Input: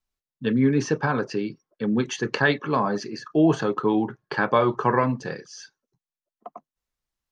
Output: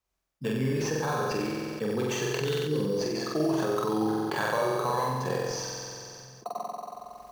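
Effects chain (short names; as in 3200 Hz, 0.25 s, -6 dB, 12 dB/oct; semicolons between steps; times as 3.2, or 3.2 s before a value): HPF 44 Hz; spectral gain 2.38–3, 530–2800 Hz -26 dB; fifteen-band EQ 100 Hz -6 dB, 250 Hz -11 dB, 1600 Hz -5 dB; compressor 6:1, threshold -33 dBFS, peak gain reduction 16 dB; in parallel at -4 dB: sample-rate reducer 5100 Hz, jitter 0%; on the sum: flutter echo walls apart 7.9 m, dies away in 1.3 s; on a send at -24 dB: reverb RT60 2.2 s, pre-delay 3 ms; on the sum: sustainer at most 20 dB/s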